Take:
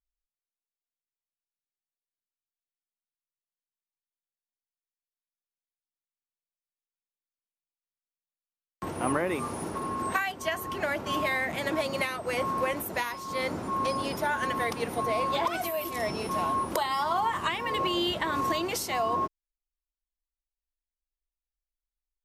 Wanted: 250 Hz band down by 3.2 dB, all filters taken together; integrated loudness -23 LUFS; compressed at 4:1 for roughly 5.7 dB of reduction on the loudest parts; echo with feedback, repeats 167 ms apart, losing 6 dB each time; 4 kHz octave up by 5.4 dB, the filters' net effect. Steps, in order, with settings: peaking EQ 250 Hz -4.5 dB; peaking EQ 4 kHz +7.5 dB; compression 4:1, threshold -30 dBFS; feedback delay 167 ms, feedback 50%, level -6 dB; trim +9 dB

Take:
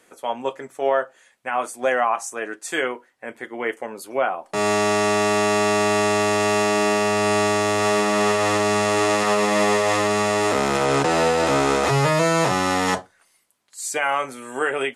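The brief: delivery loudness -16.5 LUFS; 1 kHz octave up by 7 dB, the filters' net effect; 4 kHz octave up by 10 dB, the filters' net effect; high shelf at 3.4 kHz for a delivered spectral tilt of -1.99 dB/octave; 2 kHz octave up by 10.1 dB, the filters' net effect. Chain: peaking EQ 1 kHz +6 dB; peaking EQ 2 kHz +7 dB; treble shelf 3.4 kHz +7.5 dB; peaking EQ 4 kHz +5 dB; trim -2.5 dB

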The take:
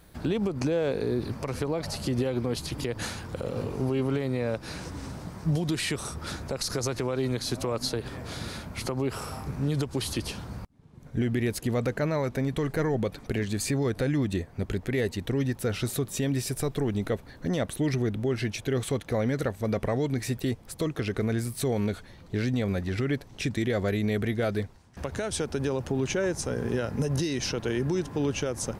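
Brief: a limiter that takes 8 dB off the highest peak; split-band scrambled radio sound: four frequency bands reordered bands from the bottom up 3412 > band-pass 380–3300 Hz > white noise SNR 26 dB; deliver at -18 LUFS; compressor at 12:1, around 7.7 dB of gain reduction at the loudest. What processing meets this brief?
compression 12:1, threshold -30 dBFS; peak limiter -27 dBFS; four frequency bands reordered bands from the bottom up 3412; band-pass 380–3300 Hz; white noise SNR 26 dB; trim +18.5 dB

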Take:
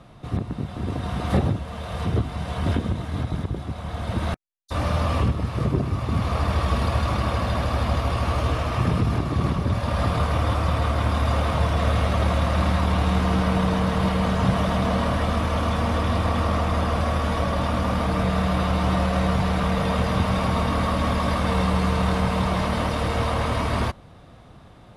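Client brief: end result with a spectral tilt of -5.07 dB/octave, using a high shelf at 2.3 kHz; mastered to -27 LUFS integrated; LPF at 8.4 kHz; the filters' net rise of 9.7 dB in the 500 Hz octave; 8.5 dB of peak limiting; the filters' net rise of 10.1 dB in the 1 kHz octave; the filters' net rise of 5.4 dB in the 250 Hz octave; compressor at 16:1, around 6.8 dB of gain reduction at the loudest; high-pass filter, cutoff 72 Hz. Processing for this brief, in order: high-pass 72 Hz; low-pass 8.4 kHz; peaking EQ 250 Hz +5.5 dB; peaking EQ 500 Hz +7.5 dB; peaking EQ 1 kHz +8.5 dB; treble shelf 2.3 kHz +7.5 dB; compression 16:1, threshold -18 dBFS; trim -0.5 dB; peak limiter -18 dBFS

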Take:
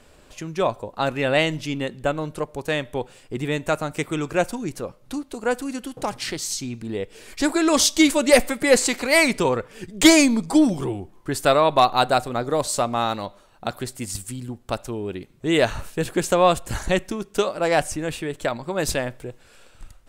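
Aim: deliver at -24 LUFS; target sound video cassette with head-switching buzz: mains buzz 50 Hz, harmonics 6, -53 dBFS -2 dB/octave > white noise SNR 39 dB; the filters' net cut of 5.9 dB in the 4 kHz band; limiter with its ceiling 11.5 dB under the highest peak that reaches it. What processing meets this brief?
peaking EQ 4 kHz -7.5 dB; peak limiter -16 dBFS; mains buzz 50 Hz, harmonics 6, -53 dBFS -2 dB/octave; white noise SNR 39 dB; trim +4 dB

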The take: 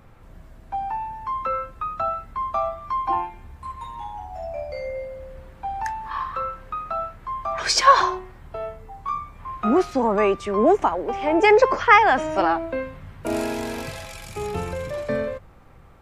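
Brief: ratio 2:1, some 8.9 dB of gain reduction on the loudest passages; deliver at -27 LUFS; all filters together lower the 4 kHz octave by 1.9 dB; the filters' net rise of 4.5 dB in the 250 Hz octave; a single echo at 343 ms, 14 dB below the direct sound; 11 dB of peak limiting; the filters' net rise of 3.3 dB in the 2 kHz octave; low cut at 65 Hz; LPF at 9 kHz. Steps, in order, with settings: high-pass 65 Hz; low-pass 9 kHz; peaking EQ 250 Hz +6 dB; peaking EQ 2 kHz +4.5 dB; peaking EQ 4 kHz -3.5 dB; compression 2:1, threshold -23 dBFS; peak limiter -19.5 dBFS; delay 343 ms -14 dB; trim +2 dB

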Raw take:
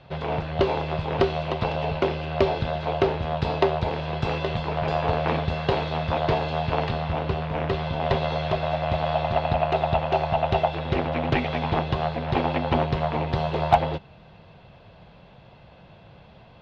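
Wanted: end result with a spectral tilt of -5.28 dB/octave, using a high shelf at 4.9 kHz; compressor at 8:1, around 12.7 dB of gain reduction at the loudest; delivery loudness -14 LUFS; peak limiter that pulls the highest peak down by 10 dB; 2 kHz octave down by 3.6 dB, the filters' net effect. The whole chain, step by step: peaking EQ 2 kHz -6.5 dB; treble shelf 4.9 kHz +7.5 dB; compression 8:1, threshold -25 dBFS; trim +18 dB; peak limiter -3 dBFS

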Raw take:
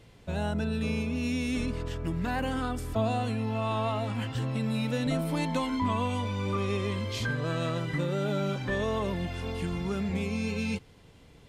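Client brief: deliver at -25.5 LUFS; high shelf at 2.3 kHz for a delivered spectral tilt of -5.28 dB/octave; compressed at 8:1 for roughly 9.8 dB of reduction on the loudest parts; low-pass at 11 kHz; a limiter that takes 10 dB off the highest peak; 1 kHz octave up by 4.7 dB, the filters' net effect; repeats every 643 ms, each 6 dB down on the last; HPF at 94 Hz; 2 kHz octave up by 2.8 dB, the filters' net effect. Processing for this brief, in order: high-pass 94 Hz; low-pass 11 kHz; peaking EQ 1 kHz +5.5 dB; peaking EQ 2 kHz +3.5 dB; treble shelf 2.3 kHz -3 dB; compression 8:1, threshold -32 dBFS; peak limiter -31.5 dBFS; feedback delay 643 ms, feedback 50%, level -6 dB; trim +13.5 dB

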